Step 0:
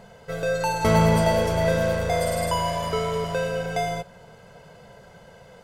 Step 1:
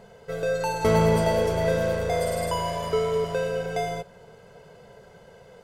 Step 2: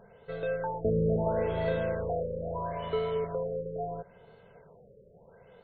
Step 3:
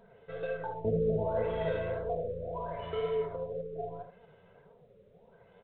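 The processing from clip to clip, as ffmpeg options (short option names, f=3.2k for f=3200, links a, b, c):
-af "equalizer=f=420:t=o:w=0.48:g=7.5,volume=-3.5dB"
-af "afftfilt=real='re*lt(b*sr/1024,580*pow(4500/580,0.5+0.5*sin(2*PI*0.75*pts/sr)))':imag='im*lt(b*sr/1024,580*pow(4500/580,0.5+0.5*sin(2*PI*0.75*pts/sr)))':win_size=1024:overlap=0.75,volume=-6dB"
-af "aecho=1:1:75:0.376,flanger=delay=4.2:depth=6.9:regen=29:speed=1.9:shape=sinusoidal" -ar 8000 -c:a adpcm_g726 -b:a 32k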